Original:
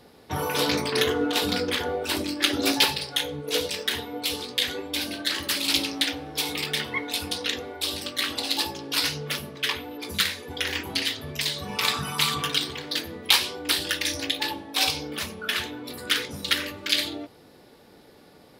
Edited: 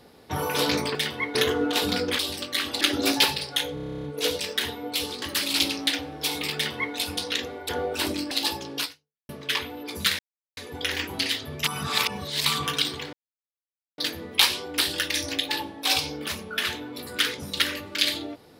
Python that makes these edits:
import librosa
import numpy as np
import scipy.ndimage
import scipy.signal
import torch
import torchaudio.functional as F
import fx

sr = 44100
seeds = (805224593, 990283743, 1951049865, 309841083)

y = fx.edit(x, sr, fx.swap(start_s=1.79, length_s=0.62, other_s=7.83, other_length_s=0.62),
    fx.stutter(start_s=3.34, slice_s=0.03, count=11),
    fx.cut(start_s=4.52, length_s=0.84),
    fx.duplicate(start_s=6.69, length_s=0.4, to_s=0.95),
    fx.fade_out_span(start_s=8.95, length_s=0.48, curve='exp'),
    fx.insert_silence(at_s=10.33, length_s=0.38),
    fx.reverse_span(start_s=11.4, length_s=0.82),
    fx.insert_silence(at_s=12.89, length_s=0.85), tone=tone)